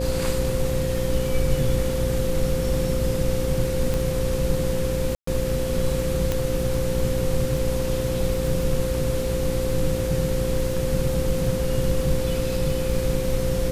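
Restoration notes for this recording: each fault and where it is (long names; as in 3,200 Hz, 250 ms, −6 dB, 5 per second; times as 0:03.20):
mains buzz 60 Hz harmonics 9 −28 dBFS
surface crackle 13 per second −29 dBFS
whistle 520 Hz −26 dBFS
0:03.94: click
0:05.15–0:05.27: drop-out 124 ms
0:06.32: click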